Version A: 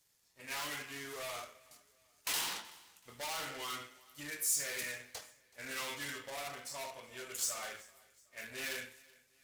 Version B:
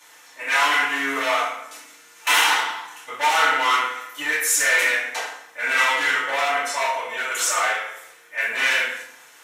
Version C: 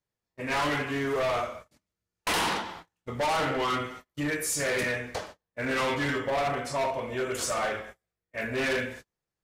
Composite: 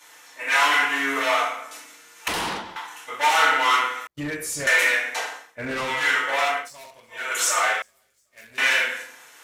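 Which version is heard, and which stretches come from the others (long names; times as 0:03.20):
B
0:02.28–0:02.76: punch in from C
0:04.07–0:04.67: punch in from C
0:05.49–0:05.94: punch in from C, crossfade 0.24 s
0:06.59–0:07.20: punch in from A, crossfade 0.24 s
0:07.82–0:08.58: punch in from A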